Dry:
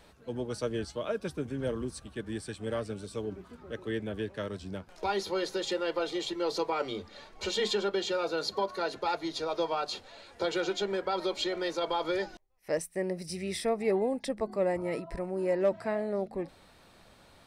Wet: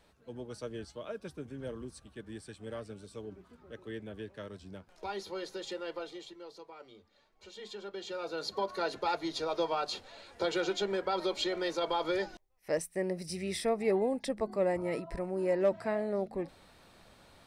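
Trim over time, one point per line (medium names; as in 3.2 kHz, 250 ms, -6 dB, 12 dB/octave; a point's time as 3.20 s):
5.95 s -8 dB
6.56 s -19.5 dB
7.47 s -19.5 dB
8.20 s -7.5 dB
8.78 s -1 dB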